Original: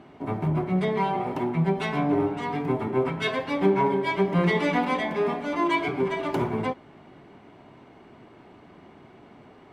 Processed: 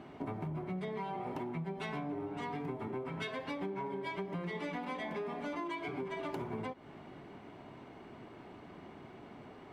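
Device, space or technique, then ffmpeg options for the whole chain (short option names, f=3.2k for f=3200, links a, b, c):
serial compression, leveller first: -af "acompressor=threshold=-29dB:ratio=2,acompressor=threshold=-35dB:ratio=6,volume=-1.5dB"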